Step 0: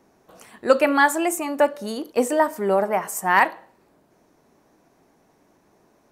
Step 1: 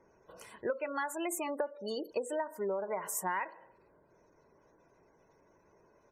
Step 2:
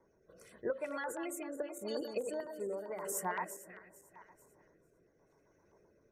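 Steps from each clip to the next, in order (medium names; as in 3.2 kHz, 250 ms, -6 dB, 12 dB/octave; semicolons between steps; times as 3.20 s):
spectral gate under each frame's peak -25 dB strong; comb 2 ms, depth 52%; compression 20:1, threshold -25 dBFS, peak gain reduction 19.5 dB; trim -6 dB
backward echo that repeats 223 ms, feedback 52%, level -7 dB; rotary cabinet horn 0.85 Hz; LFO notch square 7.7 Hz 960–2900 Hz; trim -1.5 dB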